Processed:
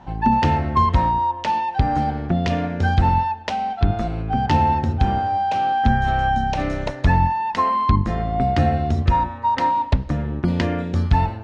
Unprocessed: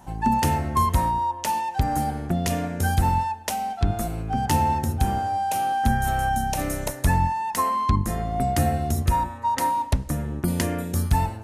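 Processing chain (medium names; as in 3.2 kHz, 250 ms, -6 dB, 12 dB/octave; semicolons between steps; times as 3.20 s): low-pass 4.3 kHz 24 dB/octave; trim +4 dB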